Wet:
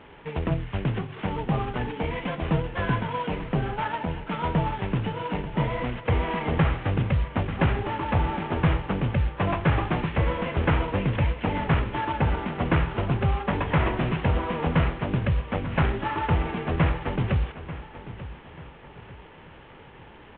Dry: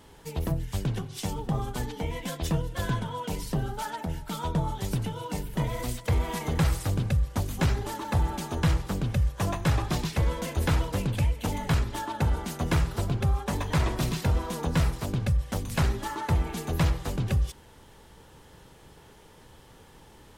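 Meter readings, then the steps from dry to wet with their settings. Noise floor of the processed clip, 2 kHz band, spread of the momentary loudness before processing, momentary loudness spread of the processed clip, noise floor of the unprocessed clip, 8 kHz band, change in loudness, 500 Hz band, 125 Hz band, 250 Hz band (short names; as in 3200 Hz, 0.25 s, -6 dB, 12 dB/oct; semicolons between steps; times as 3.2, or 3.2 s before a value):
-48 dBFS, +6.0 dB, 7 LU, 7 LU, -53 dBFS, under -40 dB, +2.5 dB, +5.5 dB, +2.0 dB, +4.0 dB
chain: CVSD 16 kbps; low shelf 110 Hz -7.5 dB; on a send: feedback echo 0.889 s, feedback 38%, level -14.5 dB; on the sum: gain +6 dB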